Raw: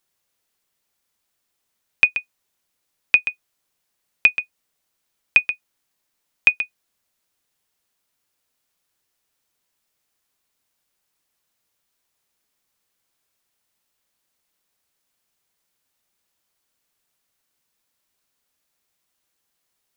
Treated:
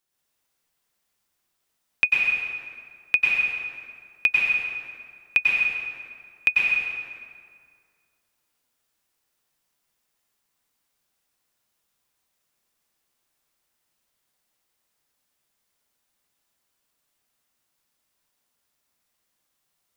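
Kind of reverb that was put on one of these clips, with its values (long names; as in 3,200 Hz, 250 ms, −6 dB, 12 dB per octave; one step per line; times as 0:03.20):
dense smooth reverb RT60 2.1 s, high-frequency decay 0.65×, pre-delay 85 ms, DRR −5 dB
level −6 dB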